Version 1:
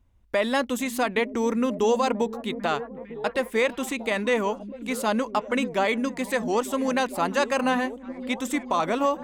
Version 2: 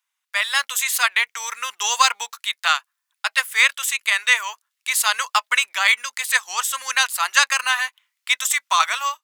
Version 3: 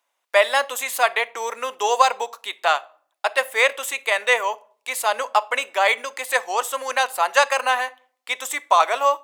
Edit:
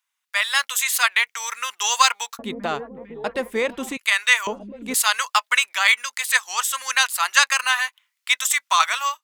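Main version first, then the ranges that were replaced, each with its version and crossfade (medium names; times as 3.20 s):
2
2.39–3.97 s: from 1
4.47–4.94 s: from 1
not used: 3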